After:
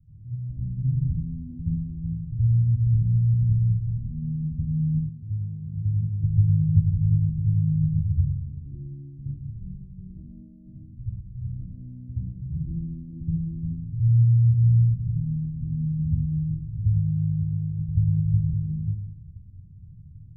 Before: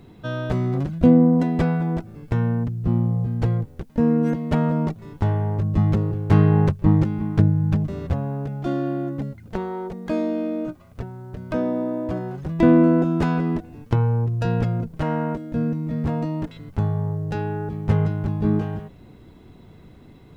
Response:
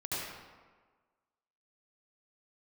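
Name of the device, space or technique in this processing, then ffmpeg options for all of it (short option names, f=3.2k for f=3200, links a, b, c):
club heard from the street: -filter_complex "[0:a]alimiter=limit=-15dB:level=0:latency=1:release=71,lowpass=f=130:w=0.5412,lowpass=f=130:w=1.3066[a];[1:a]atrim=start_sample=2205[b];[a][b]afir=irnorm=-1:irlink=0,asettb=1/sr,asplit=3[c][d][e];[c]atrim=end=5.094[f];[d]atrim=start=5.09:end=6.24,asetpts=PTS-STARTPTS,afade=t=in:d=0.004:c=qsin,afade=t=out:st=1.146:d=0.004:c=qsin,highpass=f=240:p=1[g];[e]atrim=start=6.236[h];[f][g]acrossfade=d=0.004:c1=hsin:c2=qsin[i];[i][h]acrossfade=d=0.004:c1=qsin:c2=hsin"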